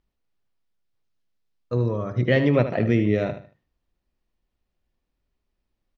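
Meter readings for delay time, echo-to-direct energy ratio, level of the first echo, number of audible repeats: 76 ms, -10.0 dB, -10.5 dB, 3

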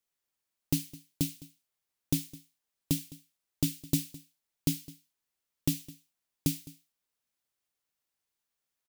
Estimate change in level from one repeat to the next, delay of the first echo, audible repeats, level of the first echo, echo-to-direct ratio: no regular repeats, 210 ms, 1, -20.0 dB, -20.0 dB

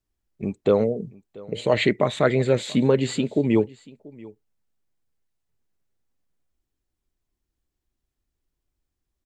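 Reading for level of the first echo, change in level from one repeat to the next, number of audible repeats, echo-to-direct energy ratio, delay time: -22.0 dB, no regular repeats, 1, -22.0 dB, 685 ms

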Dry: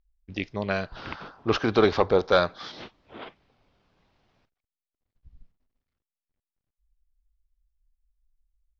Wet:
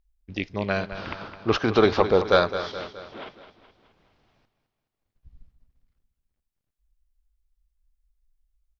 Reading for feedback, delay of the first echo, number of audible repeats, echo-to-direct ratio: 51%, 211 ms, 5, -10.0 dB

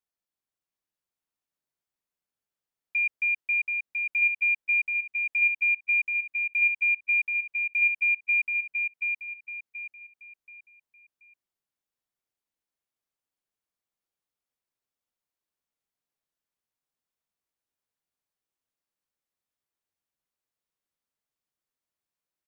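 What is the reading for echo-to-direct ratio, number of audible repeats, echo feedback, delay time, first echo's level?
-3.5 dB, 4, 34%, 730 ms, -4.0 dB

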